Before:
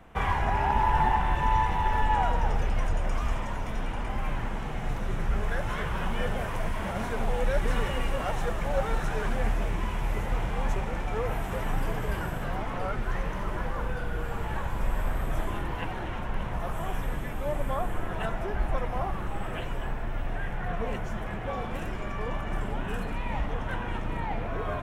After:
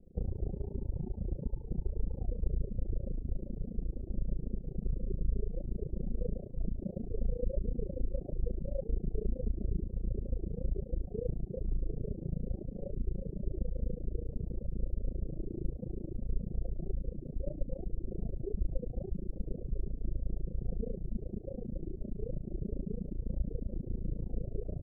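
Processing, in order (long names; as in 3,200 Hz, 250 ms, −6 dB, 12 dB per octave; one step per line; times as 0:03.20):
rectangular room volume 3,700 cubic metres, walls furnished, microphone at 1 metre
downward compressor, threshold −21 dBFS, peak gain reduction 4 dB
reverb reduction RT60 1.1 s
amplitude modulation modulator 28 Hz, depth 95%
Butterworth low-pass 510 Hz 48 dB per octave
level +1 dB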